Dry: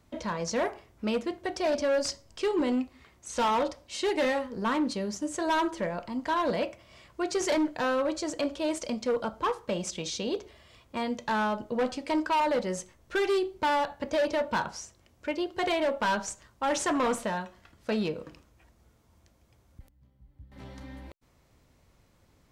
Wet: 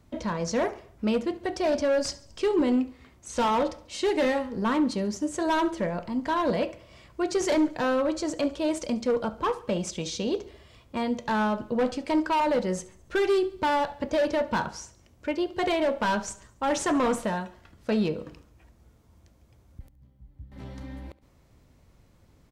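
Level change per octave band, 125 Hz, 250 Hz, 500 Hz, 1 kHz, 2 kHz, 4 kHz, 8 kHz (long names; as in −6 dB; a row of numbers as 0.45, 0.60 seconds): +5.0, +4.0, +2.5, +1.0, +0.5, 0.0, 0.0 decibels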